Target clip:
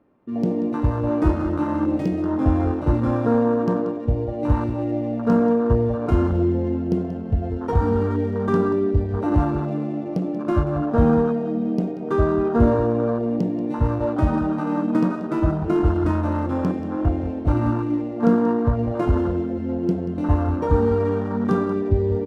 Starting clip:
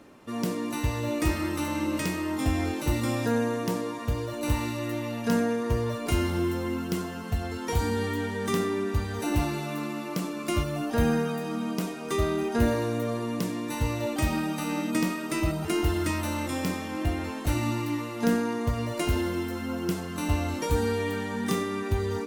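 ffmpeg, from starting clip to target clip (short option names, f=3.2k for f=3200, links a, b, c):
-af "adynamicsmooth=sensitivity=6.5:basefreq=1.3k,afwtdn=0.0282,aecho=1:1:184:0.224,volume=7.5dB"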